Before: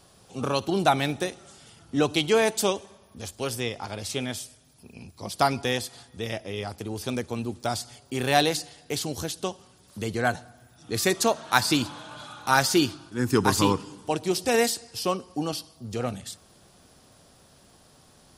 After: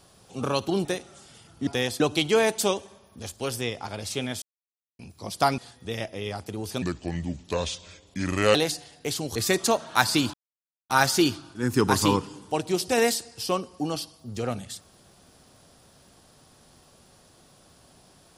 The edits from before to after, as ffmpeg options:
ffmpeg -i in.wav -filter_complex "[0:a]asplit=12[link_01][link_02][link_03][link_04][link_05][link_06][link_07][link_08][link_09][link_10][link_11][link_12];[link_01]atrim=end=0.852[link_13];[link_02]atrim=start=1.168:end=1.992[link_14];[link_03]atrim=start=5.568:end=5.902[link_15];[link_04]atrim=start=1.988:end=4.41,asetpts=PTS-STARTPTS,afade=type=out:start_time=2.418:duration=0.004:curve=hsin[link_16];[link_05]atrim=start=4.41:end=4.98,asetpts=PTS-STARTPTS,volume=0[link_17];[link_06]atrim=start=4.98:end=5.572,asetpts=PTS-STARTPTS,afade=type=in:duration=0.004:curve=hsin[link_18];[link_07]atrim=start=5.898:end=7.144[link_19];[link_08]atrim=start=7.14:end=8.4,asetpts=PTS-STARTPTS,asetrate=32193,aresample=44100[link_20];[link_09]atrim=start=8.396:end=9.212[link_21];[link_10]atrim=start=10.918:end=11.9,asetpts=PTS-STARTPTS,afade=type=out:start_time=0.978:duration=0.004:curve=hsin[link_22];[link_11]atrim=start=11.9:end=12.46,asetpts=PTS-STARTPTS,volume=0[link_23];[link_12]atrim=start=12.46,asetpts=PTS-STARTPTS,afade=type=in:duration=0.004:curve=hsin[link_24];[link_13][link_14]acrossfade=duration=0.004:curve1=hsin:curve2=hsin[link_25];[link_25][link_15]acrossfade=duration=0.004:curve1=hsin:curve2=hsin[link_26];[link_16][link_17][link_18]concat=n=3:v=0:a=1[link_27];[link_26][link_27]acrossfade=duration=0.004:curve1=hsin:curve2=hsin[link_28];[link_28][link_19]acrossfade=duration=0.004:curve1=hsin:curve2=hsin[link_29];[link_29][link_20]acrossfade=duration=0.004:curve1=hsin:curve2=hsin[link_30];[link_30][link_21]acrossfade=duration=0.004:curve1=hsin:curve2=hsin[link_31];[link_22][link_23][link_24]concat=n=3:v=0:a=1[link_32];[link_31][link_32]acrossfade=duration=0.004:curve1=hsin:curve2=hsin" out.wav

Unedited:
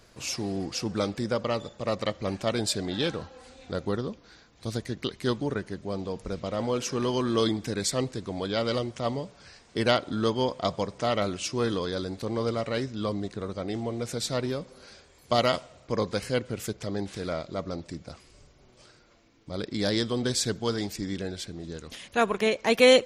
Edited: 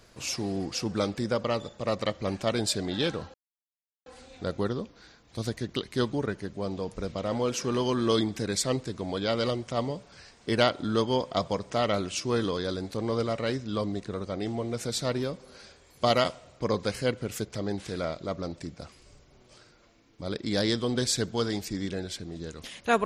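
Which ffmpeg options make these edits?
ffmpeg -i in.wav -filter_complex "[0:a]asplit=2[link_01][link_02];[link_01]atrim=end=3.34,asetpts=PTS-STARTPTS,afade=type=out:start_time=3.336:duration=0.004:curve=hsin,apad=pad_dur=0.72[link_03];[link_02]atrim=start=3.34,asetpts=PTS-STARTPTS,afade=type=in:duration=0.004:curve=hsin[link_04];[link_03][link_04]concat=n=2:v=0:a=1" out.wav

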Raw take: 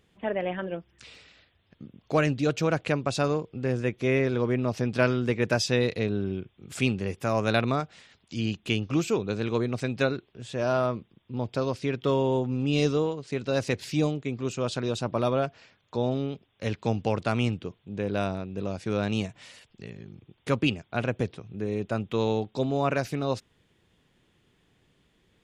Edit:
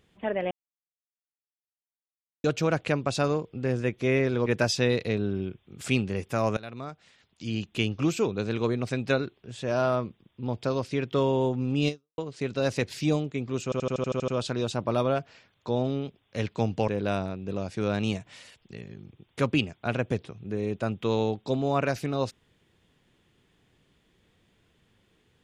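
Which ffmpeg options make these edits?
ffmpeg -i in.wav -filter_complex "[0:a]asplit=15[link_01][link_02][link_03][link_04][link_05][link_06][link_07][link_08][link_09][link_10][link_11][link_12][link_13][link_14][link_15];[link_01]atrim=end=0.51,asetpts=PTS-STARTPTS,afade=type=out:start_time=0.506:duration=0.004:curve=hsin[link_16];[link_02]atrim=start=0.51:end=2.44,asetpts=PTS-STARTPTS,volume=0[link_17];[link_03]atrim=start=2.44:end=4.462,asetpts=PTS-STARTPTS,afade=type=in:duration=0.004:curve=hsin[link_18];[link_04]atrim=start=5.368:end=7.48,asetpts=PTS-STARTPTS,afade=type=out:start_time=2.108:duration=0.004:curve=hsin:silence=0.0794328[link_19];[link_05]atrim=start=7.48:end=13.09,asetpts=PTS-STARTPTS,afade=type=in:duration=1.26:silence=0.0794328,afade=type=out:start_time=5.31:duration=0.3:curve=exp[link_20];[link_06]atrim=start=13.09:end=14.632,asetpts=PTS-STARTPTS,afade=type=in:duration=0.004:curve=hsin[link_21];[link_07]atrim=start=14.548:end=14.632[link_22];[link_08]atrim=start=14.548:end=14.632[link_23];[link_09]atrim=start=14.548:end=14.632[link_24];[link_10]atrim=start=14.548:end=14.632[link_25];[link_11]atrim=start=14.548:end=14.632[link_26];[link_12]atrim=start=14.548:end=14.632[link_27];[link_13]atrim=start=14.548:end=14.632[link_28];[link_14]atrim=start=14.548:end=17.152[link_29];[link_15]atrim=start=17.968[link_30];[link_16][link_17][link_18]concat=n=3:v=0:a=1[link_31];[link_19][link_20][link_21]concat=n=3:v=0:a=1[link_32];[link_31][link_32]acrossfade=duration=0.004:curve1=hsin:curve2=hsin[link_33];[link_33][link_22]acrossfade=duration=0.004:curve1=hsin:curve2=hsin[link_34];[link_34][link_23]acrossfade=duration=0.004:curve1=hsin:curve2=hsin[link_35];[link_35][link_24]acrossfade=duration=0.004:curve1=hsin:curve2=hsin[link_36];[link_36][link_25]acrossfade=duration=0.004:curve1=hsin:curve2=hsin[link_37];[link_37][link_26]acrossfade=duration=0.004:curve1=hsin:curve2=hsin[link_38];[link_38][link_27]acrossfade=duration=0.004:curve1=hsin:curve2=hsin[link_39];[link_39][link_28]acrossfade=duration=0.004:curve1=hsin:curve2=hsin[link_40];[link_40][link_29]acrossfade=duration=0.004:curve1=hsin:curve2=hsin[link_41];[link_41][link_30]acrossfade=duration=0.004:curve1=hsin:curve2=hsin" out.wav

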